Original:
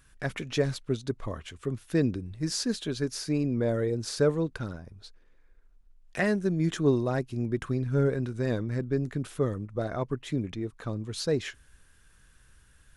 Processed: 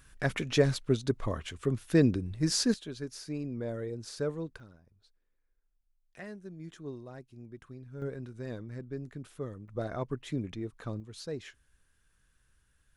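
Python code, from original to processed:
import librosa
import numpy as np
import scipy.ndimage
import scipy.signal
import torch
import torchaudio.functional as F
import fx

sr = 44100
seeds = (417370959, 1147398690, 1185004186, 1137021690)

y = fx.gain(x, sr, db=fx.steps((0.0, 2.0), (2.74, -9.0), (4.6, -18.0), (8.02, -11.0), (9.68, -4.0), (11.0, -11.0)))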